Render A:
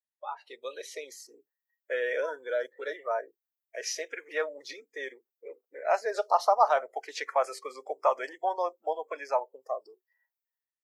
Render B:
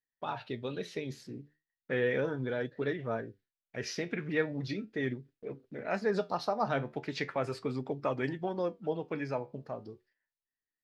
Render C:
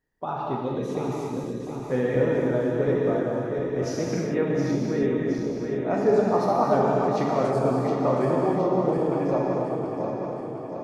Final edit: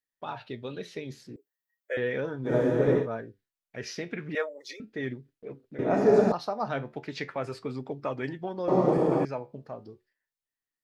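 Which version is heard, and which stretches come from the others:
B
1.36–1.97 s: from A
2.49–3.03 s: from C, crossfade 0.10 s
4.35–4.80 s: from A
5.79–6.32 s: from C
8.68–9.25 s: from C

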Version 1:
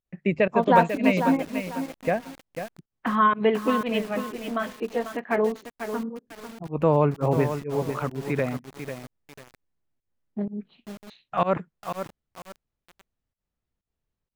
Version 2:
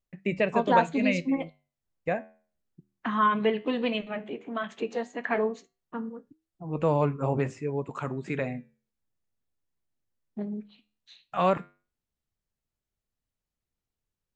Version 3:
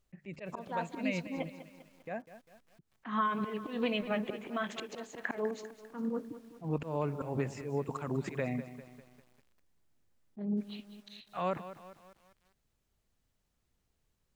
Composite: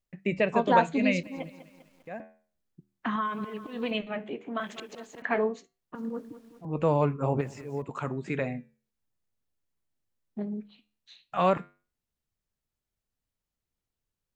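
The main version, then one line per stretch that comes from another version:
2
1.23–2.20 s: from 3
3.16–3.91 s: from 3
4.60–5.22 s: from 3
5.95–6.65 s: from 3
7.41–7.82 s: from 3
not used: 1

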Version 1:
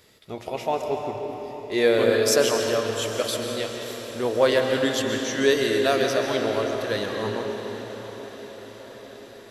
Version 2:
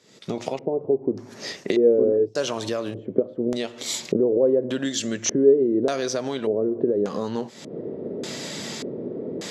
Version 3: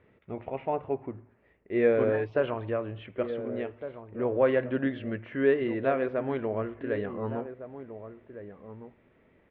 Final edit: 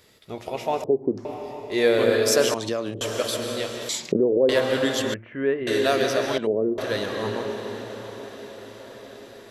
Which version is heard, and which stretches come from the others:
1
0.84–1.25 s: from 2
2.54–3.01 s: from 2
3.89–4.49 s: from 2
5.14–5.67 s: from 3
6.38–6.78 s: from 2

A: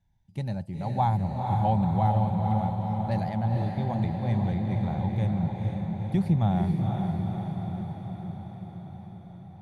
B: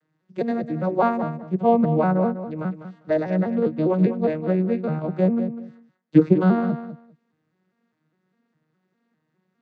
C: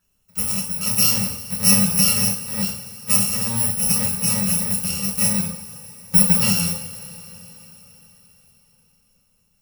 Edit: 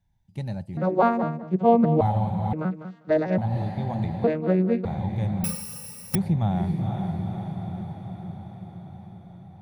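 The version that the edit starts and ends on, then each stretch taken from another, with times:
A
0.77–2.01 s: from B
2.53–3.38 s: from B
4.24–4.85 s: from B
5.44–6.15 s: from C

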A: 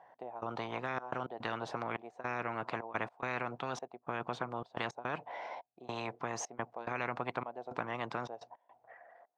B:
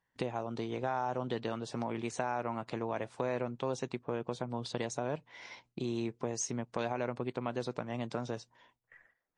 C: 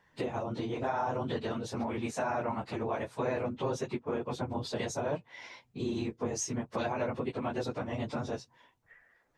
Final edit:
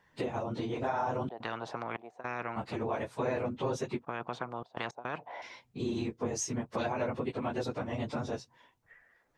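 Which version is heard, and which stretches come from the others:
C
1.29–2.56 s: from A
4.05–5.42 s: from A
not used: B

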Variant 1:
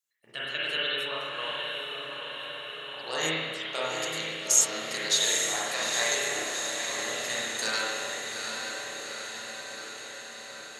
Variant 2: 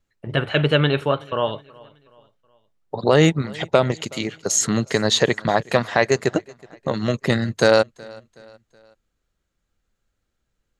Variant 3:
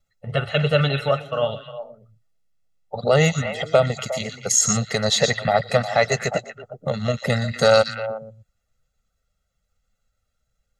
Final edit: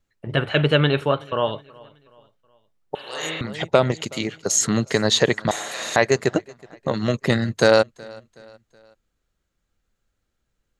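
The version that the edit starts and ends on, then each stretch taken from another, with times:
2
2.95–3.41 s: from 1
5.51–5.96 s: from 1
not used: 3

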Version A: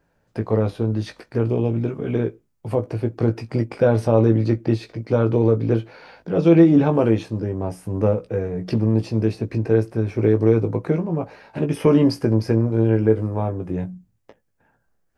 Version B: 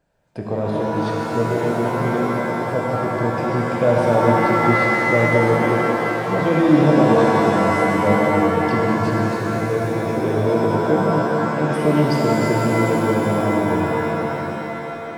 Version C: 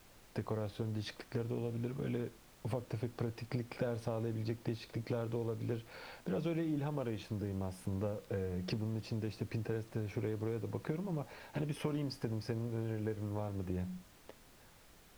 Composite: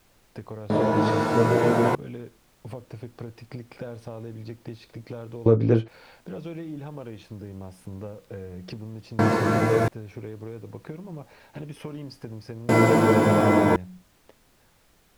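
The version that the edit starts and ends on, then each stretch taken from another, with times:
C
0.70–1.95 s: from B
5.46–5.88 s: from A
9.19–9.88 s: from B
12.69–13.76 s: from B

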